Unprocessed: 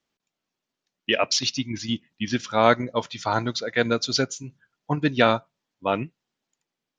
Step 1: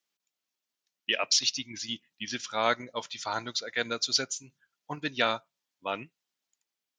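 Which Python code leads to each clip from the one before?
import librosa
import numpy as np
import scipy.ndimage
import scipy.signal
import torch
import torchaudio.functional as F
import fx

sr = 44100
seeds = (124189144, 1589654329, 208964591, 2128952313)

y = fx.tilt_eq(x, sr, slope=3.0)
y = y * librosa.db_to_amplitude(-8.0)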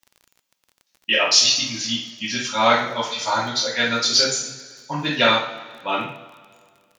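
y = fx.rev_double_slope(x, sr, seeds[0], early_s=0.49, late_s=2.0, knee_db=-18, drr_db=-8.5)
y = fx.dmg_crackle(y, sr, seeds[1], per_s=27.0, level_db=-38.0)
y = y * librosa.db_to_amplitude(2.0)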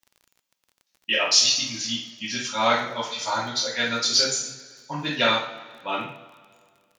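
y = fx.dynamic_eq(x, sr, hz=9300.0, q=0.7, threshold_db=-34.0, ratio=4.0, max_db=4)
y = y * librosa.db_to_amplitude(-4.5)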